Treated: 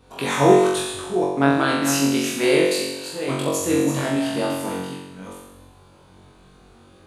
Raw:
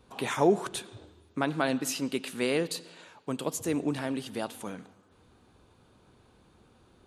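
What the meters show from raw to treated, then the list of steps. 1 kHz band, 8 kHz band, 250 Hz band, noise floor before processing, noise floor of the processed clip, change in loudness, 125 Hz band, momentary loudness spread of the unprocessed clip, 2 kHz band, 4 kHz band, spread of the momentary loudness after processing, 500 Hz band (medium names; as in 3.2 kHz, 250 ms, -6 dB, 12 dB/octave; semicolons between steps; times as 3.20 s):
+11.0 dB, +11.0 dB, +10.5 dB, -63 dBFS, -51 dBFS, +10.5 dB, +11.0 dB, 16 LU, +10.5 dB, +11.0 dB, 14 LU, +11.0 dB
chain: chunks repeated in reverse 414 ms, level -8 dB; flutter echo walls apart 3.7 m, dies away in 0.95 s; trim +4.5 dB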